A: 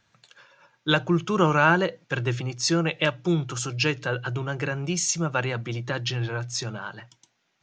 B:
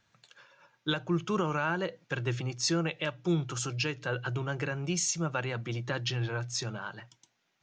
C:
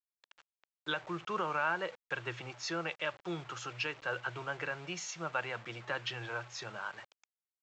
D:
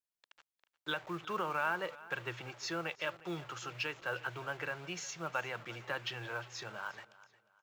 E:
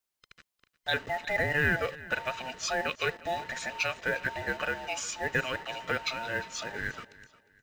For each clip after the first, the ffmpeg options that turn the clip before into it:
ffmpeg -i in.wav -af "alimiter=limit=-14.5dB:level=0:latency=1:release=320,volume=-4dB" out.wav
ffmpeg -i in.wav -filter_complex "[0:a]aresample=16000,acrusher=bits=7:mix=0:aa=0.000001,aresample=44100,acrossover=split=500 3300:gain=0.178 1 0.2[link_01][link_02][link_03];[link_01][link_02][link_03]amix=inputs=3:normalize=0" out.wav
ffmpeg -i in.wav -af "acrusher=bits=7:mode=log:mix=0:aa=0.000001,aecho=1:1:356|712|1068:0.112|0.0348|0.0108,volume=-1.5dB" out.wav
ffmpeg -i in.wav -af "afftfilt=real='real(if(between(b,1,1008),(2*floor((b-1)/48)+1)*48-b,b),0)':imag='imag(if(between(b,1,1008),(2*floor((b-1)/48)+1)*48-b,b),0)*if(between(b,1,1008),-1,1)':win_size=2048:overlap=0.75,volume=7.5dB" out.wav

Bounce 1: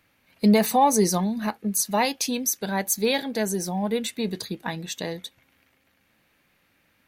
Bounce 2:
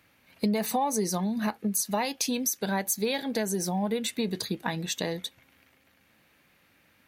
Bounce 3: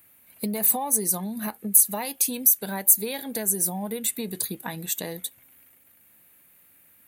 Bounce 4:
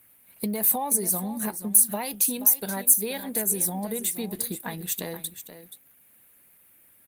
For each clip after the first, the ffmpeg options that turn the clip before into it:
ffmpeg -i in.wav -af "highpass=45,acompressor=threshold=-27dB:ratio=5,volume=2dB" out.wav
ffmpeg -i in.wav -af "aexciter=amount=4.9:drive=9:freq=7800,volume=-3dB" out.wav
ffmpeg -i in.wav -af "aecho=1:1:479:0.251" -ar 48000 -c:a libopus -b:a 20k out.opus

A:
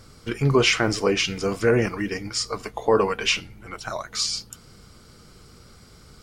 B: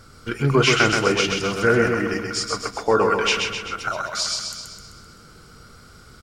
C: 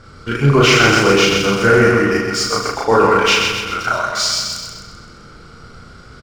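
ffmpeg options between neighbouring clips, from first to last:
ffmpeg -i in.wav -filter_complex "[0:a]equalizer=frequency=1400:width_type=o:width=0.23:gain=11.5,asplit=2[link_01][link_02];[link_02]aecho=0:1:129|258|387|516|645|774|903:0.596|0.328|0.18|0.0991|0.0545|0.03|0.0165[link_03];[link_01][link_03]amix=inputs=2:normalize=0" out.wav
ffmpeg -i in.wav -af "aecho=1:1:34.99|75.8:1|0.447,apsyclip=9dB,adynamicsmooth=sensitivity=2.5:basefreq=4900,volume=-4.5dB" out.wav

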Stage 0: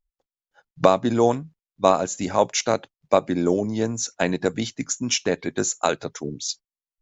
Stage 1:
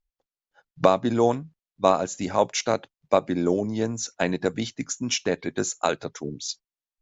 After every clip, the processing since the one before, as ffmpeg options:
ffmpeg -i in.wav -af "lowpass=7000,volume=-2dB" out.wav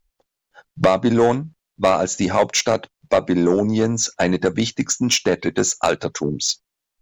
ffmpeg -i in.wav -filter_complex "[0:a]asplit=2[link_01][link_02];[link_02]acompressor=threshold=-30dB:ratio=6,volume=1dB[link_03];[link_01][link_03]amix=inputs=2:normalize=0,asoftclip=type=tanh:threshold=-13.5dB,volume=6dB" out.wav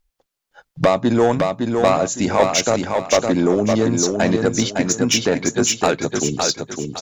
ffmpeg -i in.wav -af "aecho=1:1:560|1120|1680|2240:0.596|0.179|0.0536|0.0161" out.wav

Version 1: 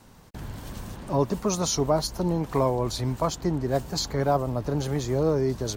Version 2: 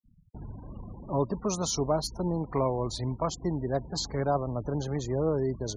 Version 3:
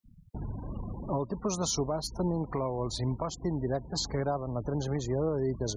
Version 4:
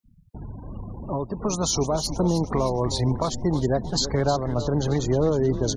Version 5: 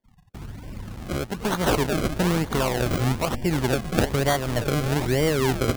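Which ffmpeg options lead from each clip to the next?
ffmpeg -i in.wav -af "afftfilt=real='re*gte(hypot(re,im),0.0158)':imag='im*gte(hypot(re,im),0.0158)':win_size=1024:overlap=0.75,volume=-4dB" out.wav
ffmpeg -i in.wav -filter_complex "[0:a]asplit=2[link_01][link_02];[link_02]acompressor=threshold=-38dB:ratio=6,volume=-2dB[link_03];[link_01][link_03]amix=inputs=2:normalize=0,alimiter=limit=-20.5dB:level=0:latency=1:release=393" out.wav
ffmpeg -i in.wav -filter_complex "[0:a]asplit=2[link_01][link_02];[link_02]asplit=6[link_03][link_04][link_05][link_06][link_07][link_08];[link_03]adelay=312,afreqshift=-130,volume=-11dB[link_09];[link_04]adelay=624,afreqshift=-260,volume=-16.5dB[link_10];[link_05]adelay=936,afreqshift=-390,volume=-22dB[link_11];[link_06]adelay=1248,afreqshift=-520,volume=-27.5dB[link_12];[link_07]adelay=1560,afreqshift=-650,volume=-33.1dB[link_13];[link_08]adelay=1872,afreqshift=-780,volume=-38.6dB[link_14];[link_09][link_10][link_11][link_12][link_13][link_14]amix=inputs=6:normalize=0[link_15];[link_01][link_15]amix=inputs=2:normalize=0,dynaudnorm=framelen=220:gausssize=13:maxgain=8dB" out.wav
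ffmpeg -i in.wav -af "aemphasis=mode=production:type=cd,acrusher=samples=33:mix=1:aa=0.000001:lfo=1:lforange=33:lforate=1.1" out.wav

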